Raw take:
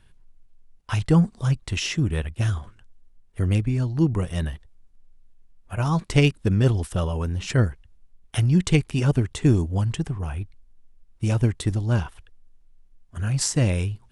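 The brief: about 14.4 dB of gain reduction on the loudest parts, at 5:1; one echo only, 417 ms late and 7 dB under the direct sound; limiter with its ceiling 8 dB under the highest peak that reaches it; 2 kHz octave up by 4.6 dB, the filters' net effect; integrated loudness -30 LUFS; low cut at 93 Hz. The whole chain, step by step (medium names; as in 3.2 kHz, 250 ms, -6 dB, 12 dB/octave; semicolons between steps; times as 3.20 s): high-pass 93 Hz; peaking EQ 2 kHz +6 dB; compression 5:1, threshold -30 dBFS; peak limiter -24.5 dBFS; delay 417 ms -7 dB; trim +5 dB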